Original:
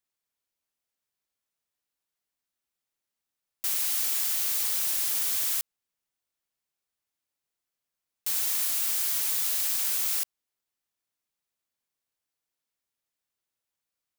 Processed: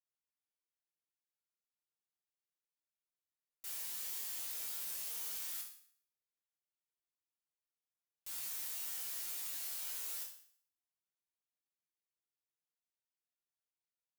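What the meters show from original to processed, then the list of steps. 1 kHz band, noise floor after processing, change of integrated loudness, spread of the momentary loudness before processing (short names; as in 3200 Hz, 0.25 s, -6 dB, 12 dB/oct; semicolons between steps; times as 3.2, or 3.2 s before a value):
-13.0 dB, under -85 dBFS, -15.0 dB, 5 LU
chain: resonator bank A#2 sus4, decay 0.56 s; added harmonics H 6 -26 dB, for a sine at -30 dBFS; gain +3 dB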